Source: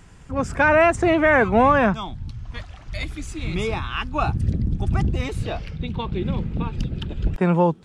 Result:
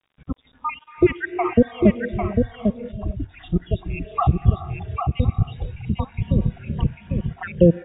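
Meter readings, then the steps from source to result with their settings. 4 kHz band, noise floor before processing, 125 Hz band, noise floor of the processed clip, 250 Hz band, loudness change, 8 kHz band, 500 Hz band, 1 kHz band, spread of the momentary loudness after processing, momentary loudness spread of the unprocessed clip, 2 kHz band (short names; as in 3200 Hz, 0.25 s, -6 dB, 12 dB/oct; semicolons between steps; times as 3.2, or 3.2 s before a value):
-8.5 dB, -44 dBFS, +2.5 dB, -58 dBFS, +2.0 dB, -1.5 dB, under -35 dB, -2.0 dB, -6.5 dB, 12 LU, 16 LU, -11.0 dB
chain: random spectral dropouts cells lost 83%; HPF 150 Hz 6 dB/oct; tilt -3 dB/oct; notch 890 Hz, Q 5.3; non-linear reverb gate 0.48 s rising, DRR 11.5 dB; in parallel at -3 dB: compressor 5:1, threshold -35 dBFS, peak gain reduction 20.5 dB; on the sum: crackle 150/s -39 dBFS; requantised 8-bit, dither none; spectral noise reduction 12 dB; brick-wall FIR low-pass 3800 Hz; echo 0.799 s -5 dB; gain +2.5 dB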